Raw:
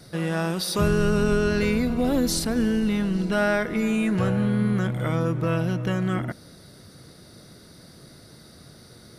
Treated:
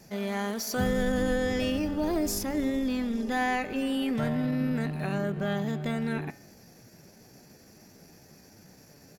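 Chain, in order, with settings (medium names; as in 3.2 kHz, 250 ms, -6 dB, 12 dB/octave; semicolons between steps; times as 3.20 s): pitch shift +3.5 st; de-hum 138.8 Hz, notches 36; trim -5.5 dB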